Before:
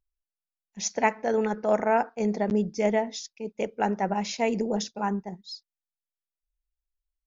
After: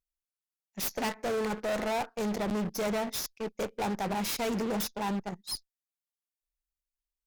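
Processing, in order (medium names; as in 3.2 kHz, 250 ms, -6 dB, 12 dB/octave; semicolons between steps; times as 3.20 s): tracing distortion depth 0.3 ms; treble shelf 4.1 kHz +7.5 dB; in parallel at -8 dB: fuzz box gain 36 dB, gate -37 dBFS; on the sum: valve stage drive 21 dB, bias 0.35; trim -6.5 dB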